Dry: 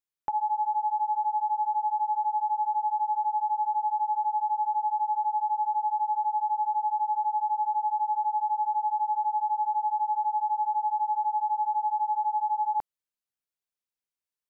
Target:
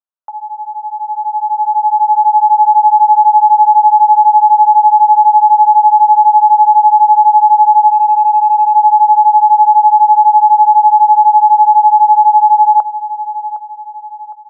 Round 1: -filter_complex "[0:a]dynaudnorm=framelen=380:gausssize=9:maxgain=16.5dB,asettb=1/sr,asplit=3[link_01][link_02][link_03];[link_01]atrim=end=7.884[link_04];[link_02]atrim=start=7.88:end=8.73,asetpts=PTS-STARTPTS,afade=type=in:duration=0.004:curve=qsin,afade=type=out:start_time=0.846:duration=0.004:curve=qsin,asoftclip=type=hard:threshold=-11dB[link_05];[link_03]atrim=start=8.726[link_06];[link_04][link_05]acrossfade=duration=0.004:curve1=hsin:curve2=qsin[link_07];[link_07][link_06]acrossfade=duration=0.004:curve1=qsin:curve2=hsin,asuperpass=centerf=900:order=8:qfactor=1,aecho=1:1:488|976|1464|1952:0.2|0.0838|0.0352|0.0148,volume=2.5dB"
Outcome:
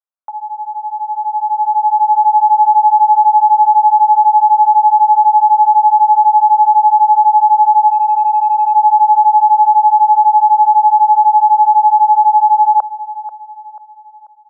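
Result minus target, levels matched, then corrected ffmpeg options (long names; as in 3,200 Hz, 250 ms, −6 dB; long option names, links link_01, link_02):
echo 273 ms early
-filter_complex "[0:a]dynaudnorm=framelen=380:gausssize=9:maxgain=16.5dB,asettb=1/sr,asplit=3[link_01][link_02][link_03];[link_01]atrim=end=7.884[link_04];[link_02]atrim=start=7.88:end=8.73,asetpts=PTS-STARTPTS,afade=type=in:duration=0.004:curve=qsin,afade=type=out:start_time=0.846:duration=0.004:curve=qsin,asoftclip=type=hard:threshold=-11dB[link_05];[link_03]atrim=start=8.726[link_06];[link_04][link_05]acrossfade=duration=0.004:curve1=hsin:curve2=qsin[link_07];[link_07][link_06]acrossfade=duration=0.004:curve1=qsin:curve2=hsin,asuperpass=centerf=900:order=8:qfactor=1,aecho=1:1:761|1522|2283|3044:0.2|0.0838|0.0352|0.0148,volume=2.5dB"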